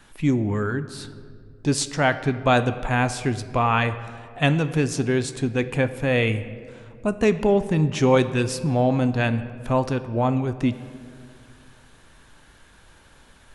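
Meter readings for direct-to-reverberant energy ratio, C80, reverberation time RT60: 11.0 dB, 14.5 dB, 2.3 s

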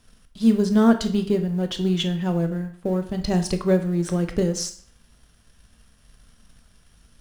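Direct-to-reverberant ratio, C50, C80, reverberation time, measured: 7.0 dB, 12.0 dB, 15.5 dB, 0.50 s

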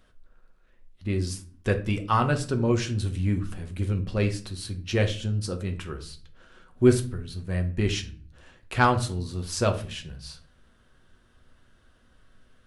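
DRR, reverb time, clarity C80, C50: 5.0 dB, 0.40 s, 18.5 dB, 13.5 dB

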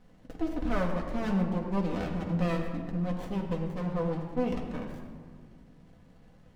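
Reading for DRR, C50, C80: -1.5 dB, 5.0 dB, 6.0 dB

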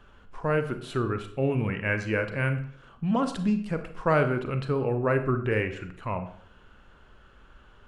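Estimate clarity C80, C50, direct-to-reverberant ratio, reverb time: 14.0 dB, 11.0 dB, 8.0 dB, 0.60 s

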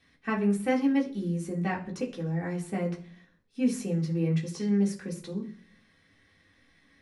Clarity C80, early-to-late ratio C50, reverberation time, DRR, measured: 17.0 dB, 12.5 dB, 0.50 s, -3.0 dB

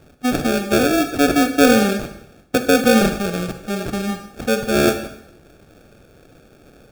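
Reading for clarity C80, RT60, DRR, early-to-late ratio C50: 12.0 dB, 0.75 s, 8.0 dB, 9.5 dB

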